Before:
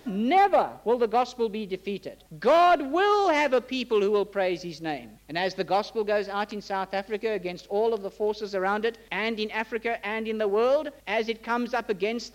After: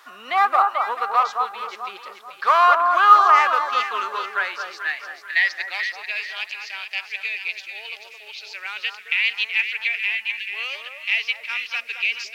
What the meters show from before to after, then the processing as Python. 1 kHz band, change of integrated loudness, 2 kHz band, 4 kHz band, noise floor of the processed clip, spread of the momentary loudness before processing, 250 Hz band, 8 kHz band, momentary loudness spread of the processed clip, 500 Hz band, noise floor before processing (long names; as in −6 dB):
+7.0 dB, +5.5 dB, +10.0 dB, +7.5 dB, −43 dBFS, 11 LU, below −20 dB, can't be measured, 17 LU, −10.0 dB, −52 dBFS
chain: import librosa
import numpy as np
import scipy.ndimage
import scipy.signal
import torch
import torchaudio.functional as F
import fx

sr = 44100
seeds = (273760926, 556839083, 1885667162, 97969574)

y = fx.filter_sweep_highpass(x, sr, from_hz=1200.0, to_hz=2500.0, start_s=3.78, end_s=6.26, q=5.9)
y = fx.spec_erase(y, sr, start_s=10.15, length_s=0.34, low_hz=250.0, high_hz=1600.0)
y = fx.quant_float(y, sr, bits=6)
y = fx.echo_alternate(y, sr, ms=218, hz=1400.0, feedback_pct=60, wet_db=-3.5)
y = F.gain(torch.from_numpy(y), 1.5).numpy()